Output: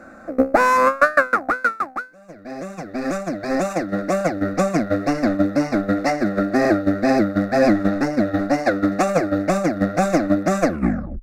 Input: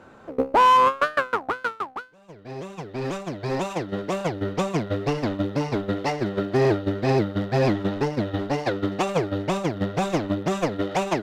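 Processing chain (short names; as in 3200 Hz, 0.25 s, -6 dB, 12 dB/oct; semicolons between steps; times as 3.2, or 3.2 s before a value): tape stop at the end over 0.60 s; fixed phaser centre 630 Hz, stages 8; gain +9 dB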